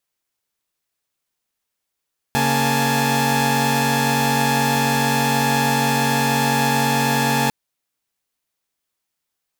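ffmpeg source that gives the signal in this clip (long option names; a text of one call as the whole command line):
ffmpeg -f lavfi -i "aevalsrc='0.106*((2*mod(138.59*t,1)-1)+(2*mod(233.08*t,1)-1)+(2*mod(830.61*t,1)-1)+(2*mod(880*t,1)-1))':duration=5.15:sample_rate=44100" out.wav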